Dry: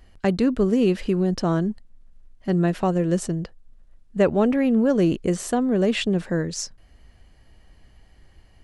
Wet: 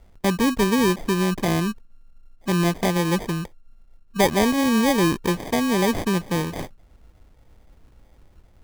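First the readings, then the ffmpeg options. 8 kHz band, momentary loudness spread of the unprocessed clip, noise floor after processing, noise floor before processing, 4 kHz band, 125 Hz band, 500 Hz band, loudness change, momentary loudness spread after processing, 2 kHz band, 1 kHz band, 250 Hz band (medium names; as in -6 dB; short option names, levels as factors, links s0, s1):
+4.0 dB, 11 LU, -54 dBFS, -54 dBFS, +6.0 dB, 0.0 dB, -1.5 dB, +0.5 dB, 11 LU, +6.5 dB, +6.0 dB, -0.5 dB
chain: -af "acrusher=samples=32:mix=1:aa=0.000001"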